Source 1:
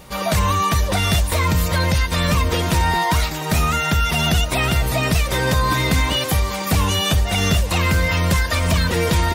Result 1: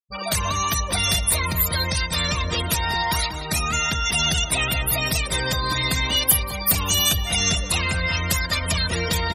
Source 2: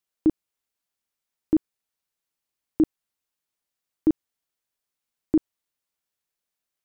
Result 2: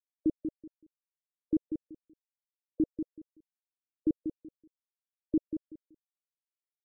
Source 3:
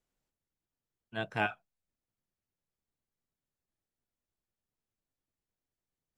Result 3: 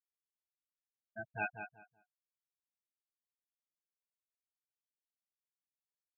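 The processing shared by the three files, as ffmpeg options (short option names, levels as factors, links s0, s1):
-filter_complex "[0:a]afftfilt=real='re*gte(hypot(re,im),0.0708)':imag='im*gte(hypot(re,im),0.0708)':win_size=1024:overlap=0.75,asplit=2[s0][s1];[s1]adelay=189,lowpass=f=2100:p=1,volume=0.422,asplit=2[s2][s3];[s3]adelay=189,lowpass=f=2100:p=1,volume=0.22,asplit=2[s4][s5];[s5]adelay=189,lowpass=f=2100:p=1,volume=0.22[s6];[s2][s4][s6]amix=inputs=3:normalize=0[s7];[s0][s7]amix=inputs=2:normalize=0,crystalizer=i=5.5:c=0,highshelf=f=9300:g=7,volume=0.376"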